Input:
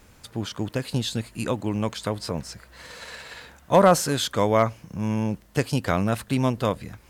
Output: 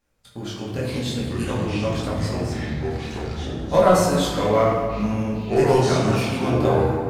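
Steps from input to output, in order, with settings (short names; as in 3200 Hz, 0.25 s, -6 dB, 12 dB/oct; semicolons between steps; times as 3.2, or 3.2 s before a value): 2.93–3.35 cycle switcher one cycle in 3, muted; gate -41 dBFS, range -18 dB; chorus voices 4, 0.47 Hz, delay 21 ms, depth 4.9 ms; reverb RT60 1.8 s, pre-delay 4 ms, DRR -3 dB; echoes that change speed 0.232 s, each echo -6 st, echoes 2; gain -1 dB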